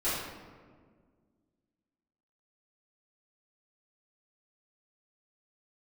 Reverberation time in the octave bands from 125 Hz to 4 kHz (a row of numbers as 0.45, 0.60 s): 2.2, 2.5, 1.9, 1.5, 1.2, 0.85 s